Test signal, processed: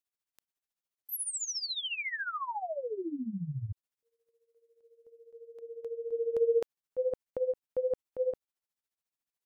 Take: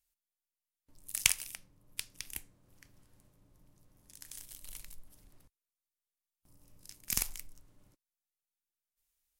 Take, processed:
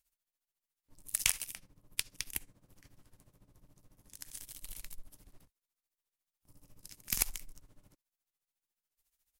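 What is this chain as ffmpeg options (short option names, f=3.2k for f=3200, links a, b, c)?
-af "tremolo=f=14:d=0.8,volume=5dB"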